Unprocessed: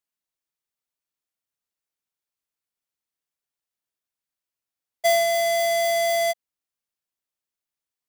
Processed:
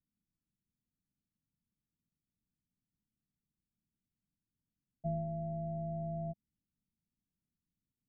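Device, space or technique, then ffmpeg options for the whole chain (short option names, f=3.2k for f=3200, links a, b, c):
the neighbour's flat through the wall: -af "lowpass=f=240:w=0.5412,lowpass=f=240:w=1.3066,equalizer=f=190:t=o:w=0.77:g=4.5,volume=15dB"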